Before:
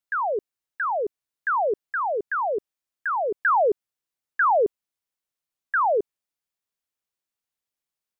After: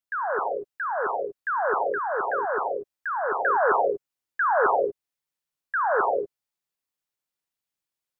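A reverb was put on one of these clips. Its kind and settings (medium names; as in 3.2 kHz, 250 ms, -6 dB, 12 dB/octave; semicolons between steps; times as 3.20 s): gated-style reverb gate 260 ms rising, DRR -1 dB; trim -3.5 dB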